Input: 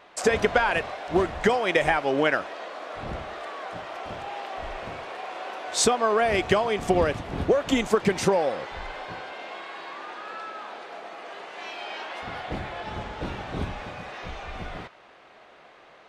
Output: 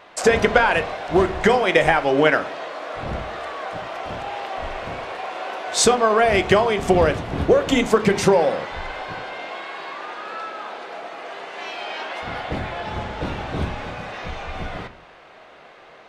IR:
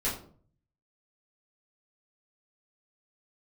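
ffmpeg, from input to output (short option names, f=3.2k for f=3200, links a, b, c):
-filter_complex "[0:a]asplit=2[a][b];[1:a]atrim=start_sample=2205,lowpass=6k[c];[b][c]afir=irnorm=-1:irlink=0,volume=-16.5dB[d];[a][d]amix=inputs=2:normalize=0,volume=4.5dB"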